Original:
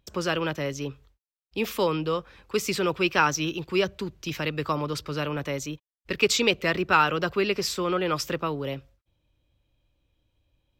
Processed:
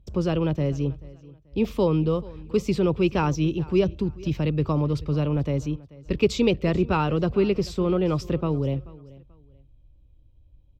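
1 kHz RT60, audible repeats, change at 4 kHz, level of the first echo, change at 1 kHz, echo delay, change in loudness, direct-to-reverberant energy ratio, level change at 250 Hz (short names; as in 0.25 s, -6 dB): none, 2, -7.5 dB, -21.0 dB, -4.5 dB, 0.435 s, +1.5 dB, none, +6.5 dB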